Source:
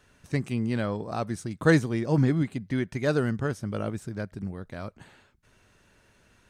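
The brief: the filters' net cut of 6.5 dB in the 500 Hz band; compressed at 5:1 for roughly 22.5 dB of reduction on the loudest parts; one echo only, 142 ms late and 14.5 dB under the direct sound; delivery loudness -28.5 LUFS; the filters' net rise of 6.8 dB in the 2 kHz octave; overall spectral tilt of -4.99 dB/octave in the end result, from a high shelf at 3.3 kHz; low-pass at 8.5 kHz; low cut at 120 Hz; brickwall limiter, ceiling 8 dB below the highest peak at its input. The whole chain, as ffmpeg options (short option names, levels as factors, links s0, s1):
-af "highpass=120,lowpass=8500,equalizer=f=500:t=o:g=-8.5,equalizer=f=2000:t=o:g=7,highshelf=f=3300:g=8,acompressor=threshold=0.00891:ratio=5,alimiter=level_in=2.99:limit=0.0631:level=0:latency=1,volume=0.335,aecho=1:1:142:0.188,volume=7.5"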